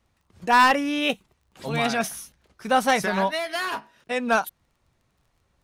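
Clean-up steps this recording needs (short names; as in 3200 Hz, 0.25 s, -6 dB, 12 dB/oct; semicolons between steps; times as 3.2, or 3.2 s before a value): clip repair -11.5 dBFS; de-click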